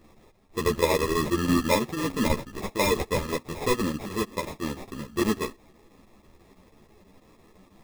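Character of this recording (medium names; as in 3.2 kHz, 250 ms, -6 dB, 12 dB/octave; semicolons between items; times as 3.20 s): a quantiser's noise floor 12-bit, dither triangular; chopped level 6.1 Hz, depth 60%, duty 85%; aliases and images of a low sample rate 1.5 kHz, jitter 0%; a shimmering, thickened sound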